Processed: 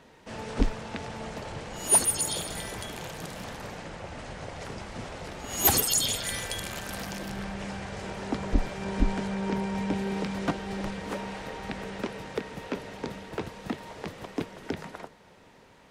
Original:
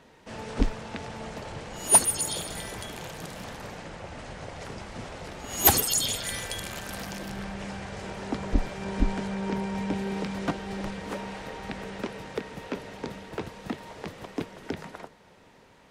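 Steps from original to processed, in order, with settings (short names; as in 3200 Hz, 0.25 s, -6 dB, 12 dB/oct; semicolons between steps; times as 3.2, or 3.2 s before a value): maximiser +9 dB; gain -8.5 dB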